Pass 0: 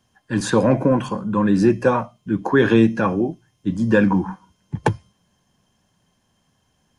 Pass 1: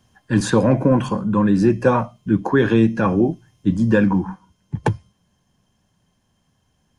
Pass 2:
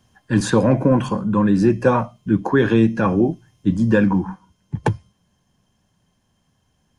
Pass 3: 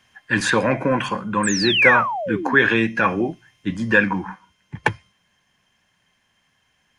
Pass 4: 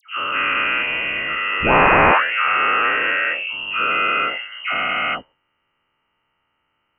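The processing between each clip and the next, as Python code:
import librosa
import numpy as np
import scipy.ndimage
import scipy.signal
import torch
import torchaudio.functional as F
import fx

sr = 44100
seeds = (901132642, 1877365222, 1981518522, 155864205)

y1 = fx.low_shelf(x, sr, hz=180.0, db=6.0)
y1 = fx.rider(y1, sr, range_db=4, speed_s=0.5)
y2 = y1
y3 = fx.low_shelf(y2, sr, hz=320.0, db=-9.0)
y3 = fx.spec_paint(y3, sr, seeds[0], shape='fall', start_s=1.43, length_s=1.12, low_hz=220.0, high_hz=8700.0, level_db=-27.0)
y3 = fx.peak_eq(y3, sr, hz=2100.0, db=14.5, octaves=1.3)
y3 = y3 * librosa.db_to_amplitude(-1.0)
y4 = fx.spec_dilate(y3, sr, span_ms=480)
y4 = fx.freq_invert(y4, sr, carrier_hz=3000)
y4 = fx.dispersion(y4, sr, late='lows', ms=104.0, hz=1400.0)
y4 = y4 * librosa.db_to_amplitude(-9.5)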